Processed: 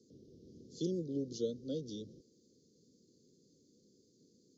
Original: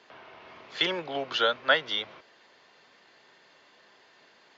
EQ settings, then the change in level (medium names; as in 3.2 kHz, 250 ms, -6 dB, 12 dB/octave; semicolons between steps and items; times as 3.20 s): inverse Chebyshev band-stop 740–2600 Hz, stop band 60 dB; low-pass 6.4 kHz 12 dB/octave; peaking EQ 490 Hz +12.5 dB 0.47 oct; +5.0 dB